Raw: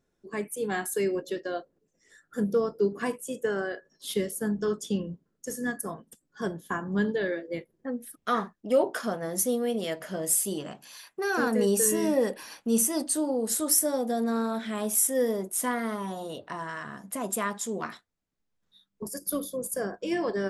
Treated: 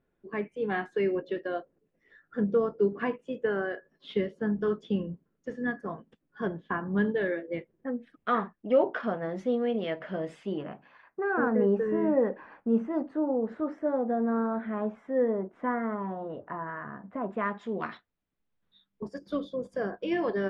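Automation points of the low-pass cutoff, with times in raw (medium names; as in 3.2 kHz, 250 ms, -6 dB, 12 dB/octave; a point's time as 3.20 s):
low-pass 24 dB/octave
10.34 s 2.9 kHz
11.08 s 1.7 kHz
17.21 s 1.7 kHz
17.86 s 3.6 kHz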